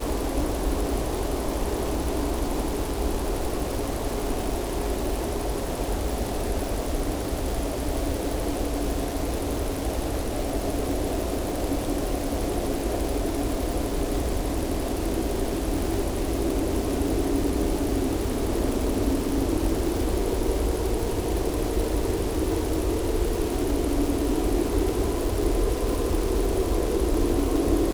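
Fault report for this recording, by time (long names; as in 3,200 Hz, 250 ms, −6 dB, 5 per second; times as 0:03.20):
surface crackle 460 per second −29 dBFS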